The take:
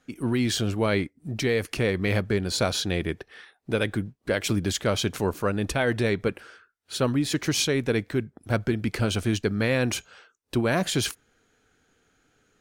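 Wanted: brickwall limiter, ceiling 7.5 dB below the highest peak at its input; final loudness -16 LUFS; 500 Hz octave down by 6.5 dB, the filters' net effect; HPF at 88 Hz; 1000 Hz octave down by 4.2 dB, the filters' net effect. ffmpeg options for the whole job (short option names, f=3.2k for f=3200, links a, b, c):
-af "highpass=88,equalizer=f=500:t=o:g=-7.5,equalizer=f=1k:t=o:g=-3.5,volume=14dB,alimiter=limit=-3.5dB:level=0:latency=1"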